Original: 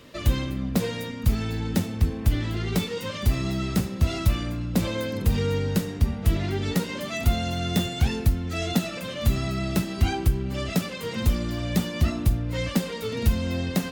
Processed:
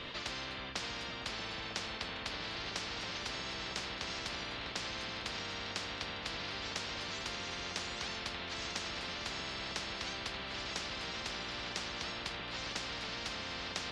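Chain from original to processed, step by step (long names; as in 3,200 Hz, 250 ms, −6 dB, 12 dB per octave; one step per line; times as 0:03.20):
transistor ladder low-pass 4,200 Hz, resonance 40%
on a send: echo whose low-pass opens from repeat to repeat 317 ms, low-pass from 200 Hz, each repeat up 1 octave, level −3 dB
on the sum: every bin compressed towards the loudest bin 10 to 1
level −3 dB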